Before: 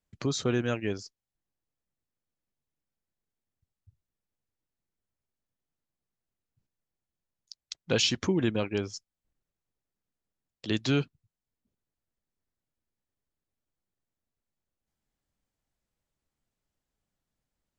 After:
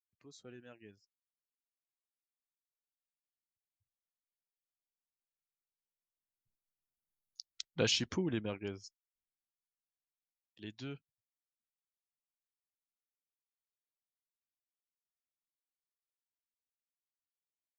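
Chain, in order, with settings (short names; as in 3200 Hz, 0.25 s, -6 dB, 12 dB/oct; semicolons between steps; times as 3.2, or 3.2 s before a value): Doppler pass-by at 7.15, 6 m/s, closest 2.7 m; spectral noise reduction 11 dB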